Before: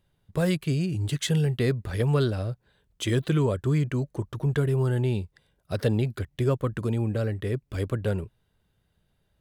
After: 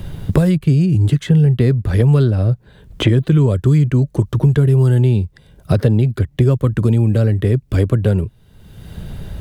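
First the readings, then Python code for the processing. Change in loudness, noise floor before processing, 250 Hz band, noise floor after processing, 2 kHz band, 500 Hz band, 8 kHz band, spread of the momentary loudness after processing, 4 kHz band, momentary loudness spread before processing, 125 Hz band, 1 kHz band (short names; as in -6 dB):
+12.0 dB, -72 dBFS, +11.5 dB, -50 dBFS, +5.5 dB, +8.0 dB, n/a, 7 LU, +5.5 dB, 9 LU, +13.5 dB, +5.5 dB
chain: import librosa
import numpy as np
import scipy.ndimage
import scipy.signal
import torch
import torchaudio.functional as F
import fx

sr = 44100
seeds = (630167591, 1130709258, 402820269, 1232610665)

y = fx.low_shelf(x, sr, hz=330.0, db=12.0)
y = fx.band_squash(y, sr, depth_pct=100)
y = y * librosa.db_to_amplitude(2.5)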